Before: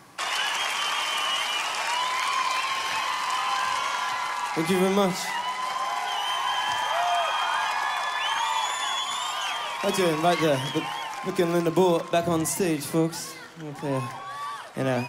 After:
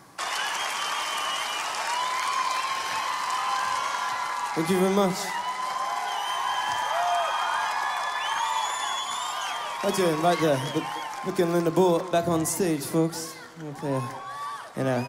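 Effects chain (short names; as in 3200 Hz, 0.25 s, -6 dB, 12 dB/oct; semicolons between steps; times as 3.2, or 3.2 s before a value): bell 2700 Hz -5.5 dB 0.75 oct; speakerphone echo 0.2 s, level -16 dB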